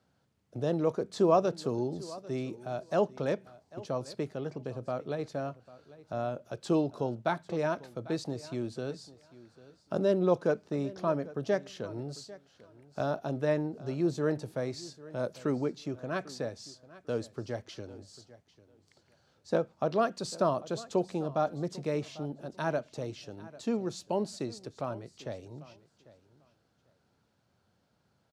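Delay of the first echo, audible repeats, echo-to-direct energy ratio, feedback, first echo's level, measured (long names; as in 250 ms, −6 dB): 796 ms, 2, −19.0 dB, 19%, −19.0 dB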